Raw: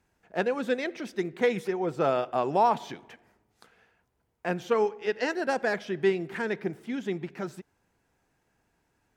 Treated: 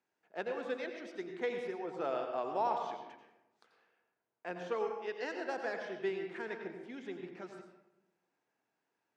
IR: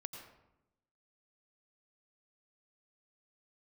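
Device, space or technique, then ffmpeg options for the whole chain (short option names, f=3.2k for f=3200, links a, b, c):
supermarket ceiling speaker: -filter_complex "[0:a]highpass=290,lowpass=6.3k[a];[1:a]atrim=start_sample=2205[b];[a][b]afir=irnorm=-1:irlink=0,volume=-6.5dB"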